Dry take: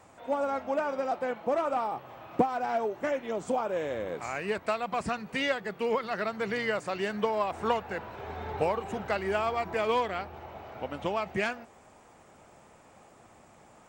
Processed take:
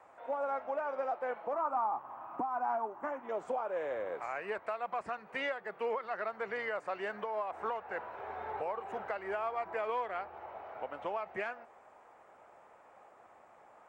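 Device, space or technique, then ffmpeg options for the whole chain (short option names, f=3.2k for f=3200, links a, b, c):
DJ mixer with the lows and highs turned down: -filter_complex "[0:a]acrossover=split=440 2100:gain=0.126 1 0.141[a][b][c];[a][b][c]amix=inputs=3:normalize=0,alimiter=level_in=2.5dB:limit=-24dB:level=0:latency=1:release=257,volume=-2.5dB,asettb=1/sr,asplit=3[d][e][f];[d]atrim=end=1.534[g];[e]atrim=start=1.53:end=3.29,asetpts=PTS-STARTPTS,afade=t=in:d=0.004:c=qsin,afade=t=out:st=1.756:d=0.004:c=qsin,equalizer=f=250:t=o:w=1:g=8,equalizer=f=500:t=o:w=1:g=-11,equalizer=f=1k:t=o:w=1:g=10,equalizer=f=2k:t=o:w=1:g=-7,equalizer=f=4k:t=o:w=1:g=-10[h];[f]atrim=start=3.286[i];[g][h]acrossfade=d=0.004:c1=hsin:c2=qsin[j];[j][i]acrossfade=d=0.004:c1=qsin:c2=hsin"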